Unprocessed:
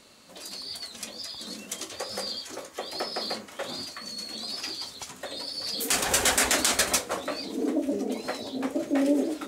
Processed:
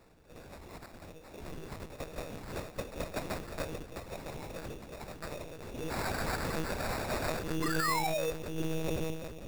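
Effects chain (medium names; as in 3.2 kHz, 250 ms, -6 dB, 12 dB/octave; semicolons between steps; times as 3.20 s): fade out at the end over 1.58 s; hum notches 50/100/150/200 Hz; on a send: filtered feedback delay 962 ms, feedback 63%, low-pass 1.3 kHz, level -5 dB; on the sum: painted sound fall, 7.62–8.31 s, 440–2100 Hz -22 dBFS; rotary cabinet horn 1.1 Hz; in parallel at +1.5 dB: compressor with a negative ratio -31 dBFS, ratio -0.5; on the sum: monotone LPC vocoder at 8 kHz 160 Hz; sample-rate reducer 3.1 kHz, jitter 0%; trim -8.5 dB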